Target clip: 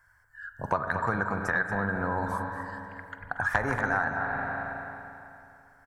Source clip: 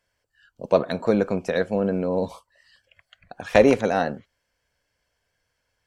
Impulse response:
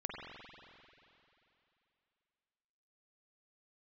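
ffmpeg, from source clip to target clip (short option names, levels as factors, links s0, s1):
-filter_complex "[0:a]firequalizer=gain_entry='entry(120,0);entry(180,-13);entry(530,-18);entry(850,0);entry(1600,7);entry(2600,-22);entry(7800,-14)':delay=0.05:min_phase=1,asplit=2[s0][s1];[1:a]atrim=start_sample=2205,asetrate=48510,aresample=44100[s2];[s1][s2]afir=irnorm=-1:irlink=0,volume=0.631[s3];[s0][s3]amix=inputs=2:normalize=0,acompressor=threshold=0.0178:ratio=4,highshelf=f=6900:g=11.5,asplit=2[s4][s5];[s5]adelay=233.2,volume=0.398,highshelf=f=4000:g=-5.25[s6];[s4][s6]amix=inputs=2:normalize=0,volume=2.66"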